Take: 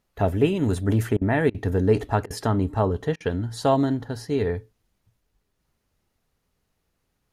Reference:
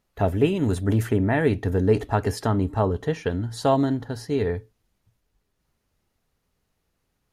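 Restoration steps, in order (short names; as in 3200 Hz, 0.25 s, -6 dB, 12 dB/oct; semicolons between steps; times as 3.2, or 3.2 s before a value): interpolate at 1.17/1.5/2.26/3.16, 43 ms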